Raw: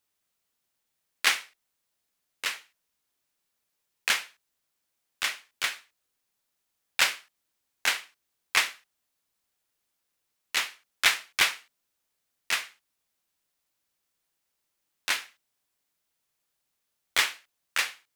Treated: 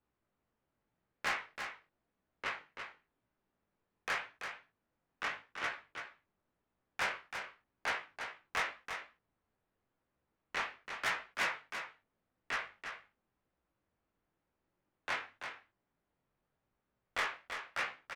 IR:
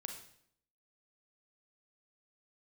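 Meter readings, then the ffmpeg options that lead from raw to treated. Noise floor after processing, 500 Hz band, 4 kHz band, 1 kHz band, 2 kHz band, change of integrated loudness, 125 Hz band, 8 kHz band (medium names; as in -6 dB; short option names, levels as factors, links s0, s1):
under -85 dBFS, -1.0 dB, -15.5 dB, -3.5 dB, -8.5 dB, -12.0 dB, no reading, -18.5 dB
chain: -filter_complex "[0:a]lowpass=1500,lowshelf=f=370:g=10,bandreject=f=50:t=h:w=6,bandreject=f=100:t=h:w=6,bandreject=f=150:t=h:w=6,acrossover=split=420[s0][s1];[s0]acompressor=threshold=0.002:ratio=6[s2];[s2][s1]amix=inputs=2:normalize=0,asoftclip=type=tanh:threshold=0.0299,flanger=delay=15.5:depth=7.5:speed=0.89,asplit=2[s3][s4];[s4]aecho=0:1:334:0.422[s5];[s3][s5]amix=inputs=2:normalize=0,volume=1.68"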